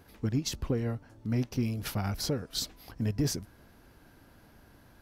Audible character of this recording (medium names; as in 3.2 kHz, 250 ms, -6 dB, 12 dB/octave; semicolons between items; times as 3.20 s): noise floor -59 dBFS; spectral tilt -5.0 dB/octave